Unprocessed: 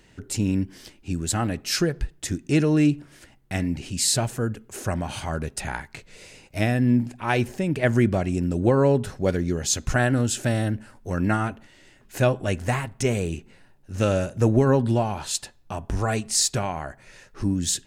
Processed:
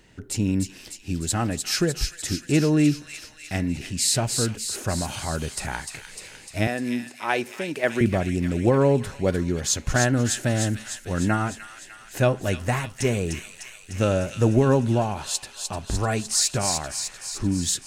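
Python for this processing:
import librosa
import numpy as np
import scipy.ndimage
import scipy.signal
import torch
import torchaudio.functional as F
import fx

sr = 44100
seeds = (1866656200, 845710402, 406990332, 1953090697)

y = fx.highpass(x, sr, hz=340.0, slope=12, at=(6.67, 8.01))
y = fx.echo_wet_highpass(y, sr, ms=301, feedback_pct=66, hz=2400.0, wet_db=-4.5)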